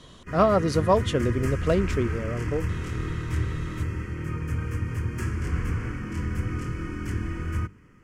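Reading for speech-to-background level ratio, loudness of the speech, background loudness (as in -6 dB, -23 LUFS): 5.5 dB, -25.0 LUFS, -30.5 LUFS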